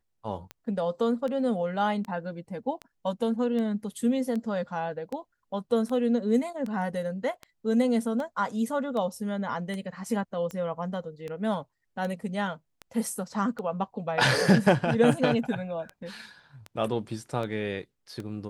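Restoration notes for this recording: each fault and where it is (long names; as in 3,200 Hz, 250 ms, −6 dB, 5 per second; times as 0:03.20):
scratch tick 78 rpm −23 dBFS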